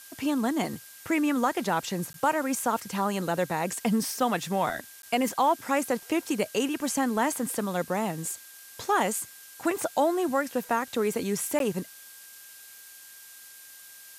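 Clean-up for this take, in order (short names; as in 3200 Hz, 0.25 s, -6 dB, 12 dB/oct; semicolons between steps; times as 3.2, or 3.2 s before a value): notch 1600 Hz, Q 30; interpolate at 2.13/5.02/11.59, 12 ms; denoiser 25 dB, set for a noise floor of -48 dBFS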